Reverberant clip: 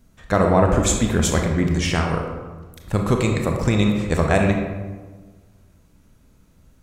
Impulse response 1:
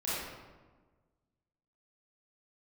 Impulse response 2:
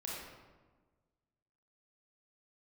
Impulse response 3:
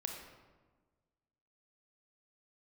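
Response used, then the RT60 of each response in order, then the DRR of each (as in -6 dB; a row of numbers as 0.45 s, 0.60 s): 3; 1.4 s, 1.4 s, 1.4 s; -11.0 dB, -5.5 dB, 2.0 dB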